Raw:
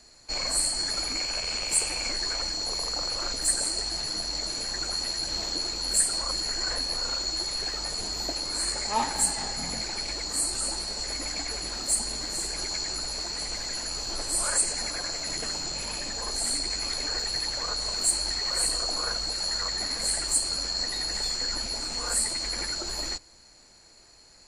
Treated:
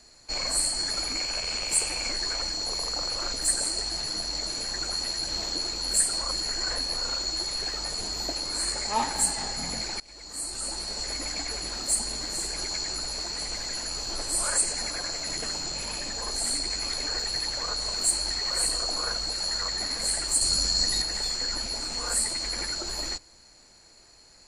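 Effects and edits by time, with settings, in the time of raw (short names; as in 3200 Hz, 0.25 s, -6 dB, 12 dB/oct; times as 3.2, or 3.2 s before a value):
10–10.96 fade in, from -23.5 dB
20.41–21.02 tone controls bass +8 dB, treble +8 dB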